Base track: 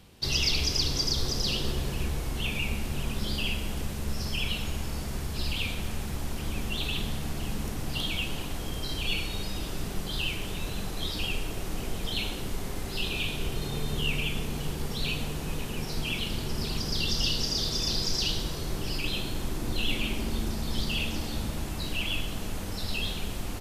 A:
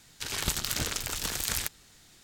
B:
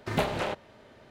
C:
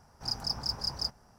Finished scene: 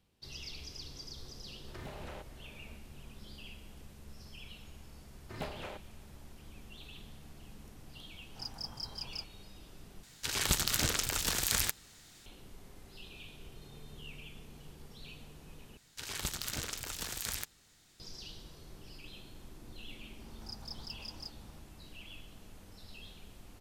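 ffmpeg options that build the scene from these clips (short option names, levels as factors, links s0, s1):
-filter_complex "[2:a]asplit=2[s0][s1];[3:a]asplit=2[s2][s3];[1:a]asplit=2[s4][s5];[0:a]volume=0.106[s6];[s0]acompressor=threshold=0.0126:ratio=6:attack=3.2:release=140:knee=1:detection=peak[s7];[s3]acompressor=mode=upward:threshold=0.0178:ratio=2.5:attack=3.2:release=140:knee=2.83:detection=peak[s8];[s6]asplit=3[s9][s10][s11];[s9]atrim=end=10.034[s12];[s4]atrim=end=2.23[s13];[s10]atrim=start=12.256:end=15.774[s14];[s5]atrim=end=2.23,asetpts=PTS-STARTPTS,volume=0.422[s15];[s11]atrim=start=17.996[s16];[s7]atrim=end=1.1,asetpts=PTS-STARTPTS,volume=0.501,afade=t=in:d=0.004:c=hsin,afade=t=out:st=1.096:d=0.004:c=hsin,adelay=1680[s17];[s1]atrim=end=1.1,asetpts=PTS-STARTPTS,volume=0.2,afade=t=in:d=0.004:c=hsin,afade=t=out:st=1.096:d=0.004:c=hsin,adelay=5230[s18];[s2]atrim=end=1.38,asetpts=PTS-STARTPTS,volume=0.335,afade=t=in:d=0.004:c=hsin,afade=t=out:st=1.376:d=0.004:c=hsin,adelay=8140[s19];[s8]atrim=end=1.38,asetpts=PTS-STARTPTS,volume=0.211,afade=t=in:d=0.004:c=hsin,afade=t=out:st=1.376:d=0.004:c=hsin,adelay=20210[s20];[s12][s13]acrossfade=d=0.004:c1=hsin:c2=hsin[s21];[s21][s14]acrossfade=d=0.004:c1=hsin:c2=hsin[s22];[s22][s15]acrossfade=d=0.004:c1=hsin:c2=hsin[s23];[s23][s16]acrossfade=d=0.004:c1=hsin:c2=hsin[s24];[s24][s17][s18][s19][s20]amix=inputs=5:normalize=0"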